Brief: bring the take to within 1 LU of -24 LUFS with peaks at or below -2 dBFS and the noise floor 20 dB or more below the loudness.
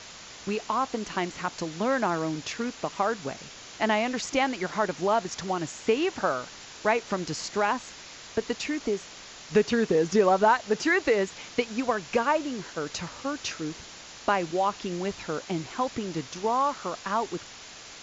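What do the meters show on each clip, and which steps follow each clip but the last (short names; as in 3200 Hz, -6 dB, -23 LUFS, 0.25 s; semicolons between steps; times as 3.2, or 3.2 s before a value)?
noise floor -45 dBFS; noise floor target -48 dBFS; loudness -28.0 LUFS; peak -10.5 dBFS; loudness target -24.0 LUFS
-> denoiser 6 dB, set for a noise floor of -45 dBFS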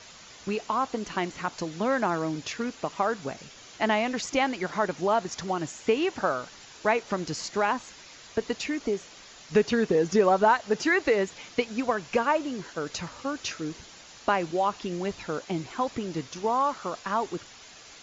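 noise floor -49 dBFS; loudness -28.0 LUFS; peak -10.5 dBFS; loudness target -24.0 LUFS
-> gain +4 dB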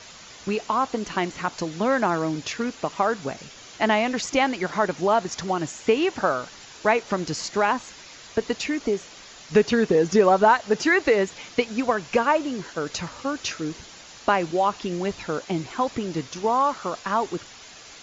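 loudness -24.0 LUFS; peak -6.5 dBFS; noise floor -45 dBFS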